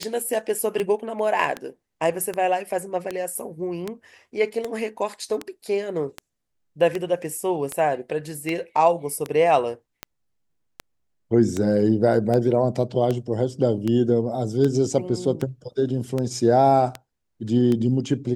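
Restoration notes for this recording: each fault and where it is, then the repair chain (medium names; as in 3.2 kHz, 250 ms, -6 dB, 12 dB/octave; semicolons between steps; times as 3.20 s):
tick 78 rpm -13 dBFS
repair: de-click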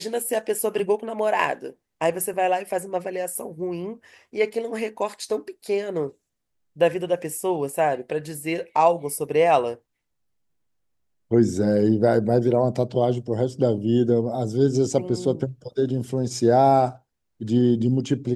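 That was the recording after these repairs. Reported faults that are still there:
nothing left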